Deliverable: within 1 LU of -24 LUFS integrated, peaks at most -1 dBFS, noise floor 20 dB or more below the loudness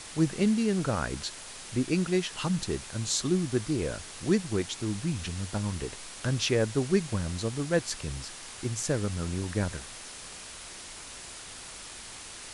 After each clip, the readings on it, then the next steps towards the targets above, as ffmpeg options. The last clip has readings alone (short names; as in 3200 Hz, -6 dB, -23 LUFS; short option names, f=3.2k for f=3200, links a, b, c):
noise floor -44 dBFS; noise floor target -50 dBFS; loudness -30.0 LUFS; peak -12.0 dBFS; loudness target -24.0 LUFS
-> -af "afftdn=nr=6:nf=-44"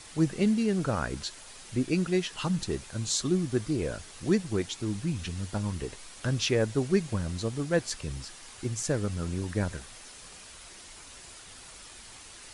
noise floor -48 dBFS; noise floor target -51 dBFS
-> -af "afftdn=nr=6:nf=-48"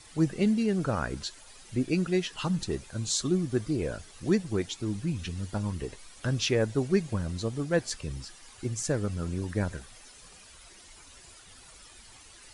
noise floor -52 dBFS; loudness -30.5 LUFS; peak -12.5 dBFS; loudness target -24.0 LUFS
-> -af "volume=6.5dB"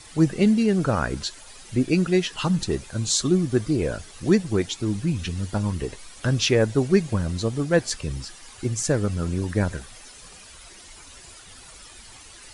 loudness -24.0 LUFS; peak -6.0 dBFS; noise floor -46 dBFS